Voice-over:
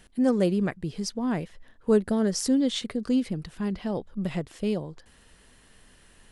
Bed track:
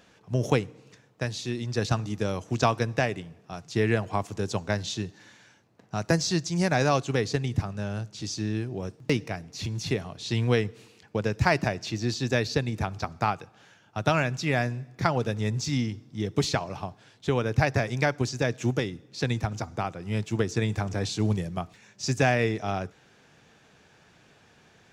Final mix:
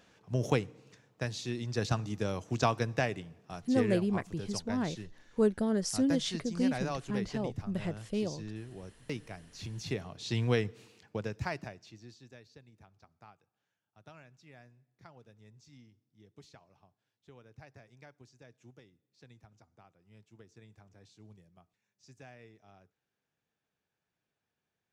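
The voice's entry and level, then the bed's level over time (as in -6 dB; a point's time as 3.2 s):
3.50 s, -5.5 dB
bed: 3.61 s -5 dB
4 s -13 dB
9.22 s -13 dB
10.25 s -5 dB
10.99 s -5 dB
12.43 s -30 dB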